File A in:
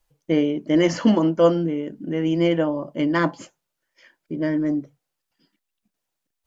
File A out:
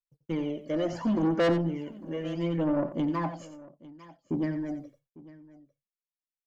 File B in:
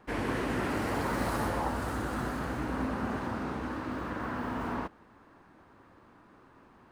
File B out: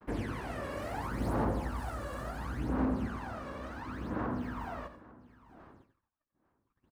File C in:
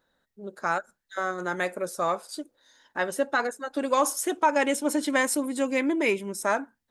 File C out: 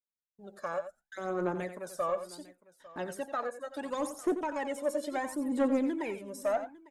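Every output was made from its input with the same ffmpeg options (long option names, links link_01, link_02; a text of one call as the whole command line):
ffmpeg -i in.wav -filter_complex "[0:a]aphaser=in_gain=1:out_gain=1:delay=1.8:decay=0.71:speed=0.71:type=sinusoidal,acrossover=split=580|1100[link_01][link_02][link_03];[link_03]acompressor=threshold=-39dB:ratio=4[link_04];[link_01][link_02][link_04]amix=inputs=3:normalize=0,asoftclip=type=tanh:threshold=-14dB,agate=range=-39dB:threshold=-51dB:ratio=16:detection=peak,aecho=1:1:89|851:0.282|0.1,volume=-7.5dB" out.wav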